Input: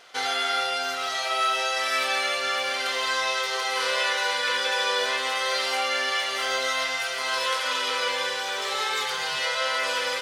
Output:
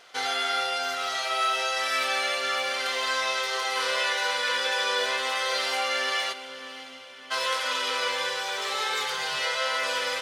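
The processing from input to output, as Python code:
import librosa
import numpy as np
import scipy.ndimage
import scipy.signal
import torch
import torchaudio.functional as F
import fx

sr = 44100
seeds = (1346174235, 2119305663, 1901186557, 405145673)

y = fx.formant_cascade(x, sr, vowel='i', at=(6.32, 7.3), fade=0.02)
y = fx.echo_diffused(y, sr, ms=589, feedback_pct=49, wet_db=-15)
y = y * 10.0 ** (-1.5 / 20.0)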